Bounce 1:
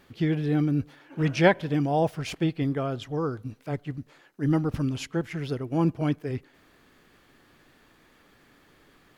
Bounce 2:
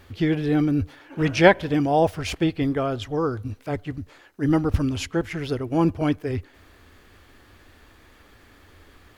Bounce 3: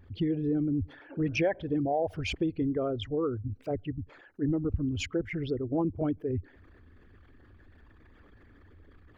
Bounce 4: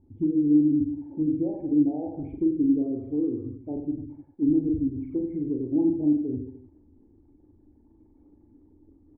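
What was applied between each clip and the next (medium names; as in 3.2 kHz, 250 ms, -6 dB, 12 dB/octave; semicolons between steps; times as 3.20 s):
resonant low shelf 110 Hz +7 dB, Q 3; trim +5.5 dB
resonances exaggerated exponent 2; compression 4:1, threshold -22 dBFS, peak gain reduction 11.5 dB; trim -3.5 dB
cascade formant filter u; reverse bouncing-ball echo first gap 40 ms, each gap 1.2×, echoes 5; low-pass that closes with the level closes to 610 Hz, closed at -30 dBFS; trim +7.5 dB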